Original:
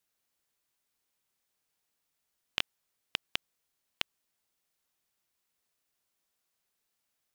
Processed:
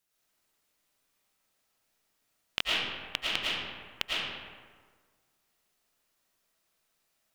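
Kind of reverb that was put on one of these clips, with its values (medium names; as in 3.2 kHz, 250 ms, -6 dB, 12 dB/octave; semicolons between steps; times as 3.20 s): algorithmic reverb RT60 1.6 s, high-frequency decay 0.55×, pre-delay 70 ms, DRR -7 dB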